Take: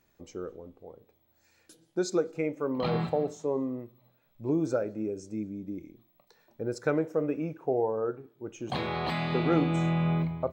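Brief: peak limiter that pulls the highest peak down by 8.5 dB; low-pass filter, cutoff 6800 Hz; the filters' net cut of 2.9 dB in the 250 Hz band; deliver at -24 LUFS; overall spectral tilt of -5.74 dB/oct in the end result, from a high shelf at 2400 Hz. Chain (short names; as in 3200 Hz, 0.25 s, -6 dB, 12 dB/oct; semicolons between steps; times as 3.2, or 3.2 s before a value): LPF 6800 Hz; bell 250 Hz -4.5 dB; high shelf 2400 Hz -5.5 dB; gain +11.5 dB; limiter -13 dBFS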